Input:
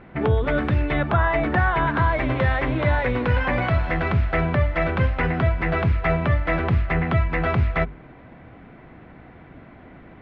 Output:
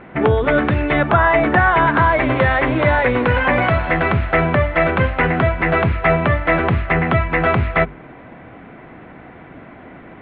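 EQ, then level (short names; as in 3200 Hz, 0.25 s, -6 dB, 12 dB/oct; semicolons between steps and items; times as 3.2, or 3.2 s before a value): LPF 3800 Hz 24 dB/oct; air absorption 52 m; low shelf 130 Hz -11 dB; +8.5 dB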